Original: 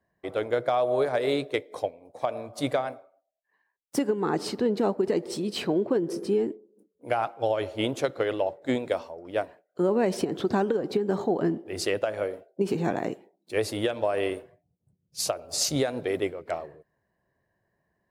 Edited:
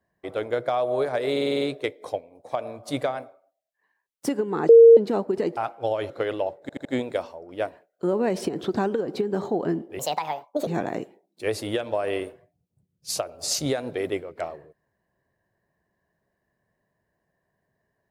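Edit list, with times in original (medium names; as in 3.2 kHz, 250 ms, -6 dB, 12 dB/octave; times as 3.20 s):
1.31 s: stutter 0.05 s, 7 plays
4.39–4.67 s: bleep 461 Hz -6.5 dBFS
5.27–7.16 s: delete
7.69–8.10 s: delete
8.61 s: stutter 0.08 s, 4 plays
11.75–12.77 s: speed 150%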